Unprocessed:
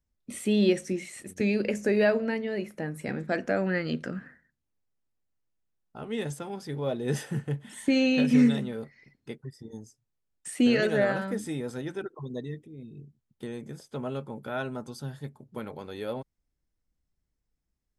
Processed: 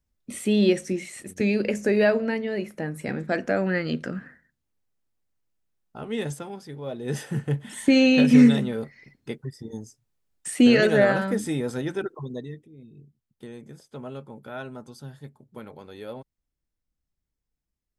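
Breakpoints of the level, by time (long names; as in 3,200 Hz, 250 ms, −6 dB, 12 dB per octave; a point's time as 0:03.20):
0:06.32 +3 dB
0:06.78 −5 dB
0:07.56 +6 dB
0:12.07 +6 dB
0:12.68 −3.5 dB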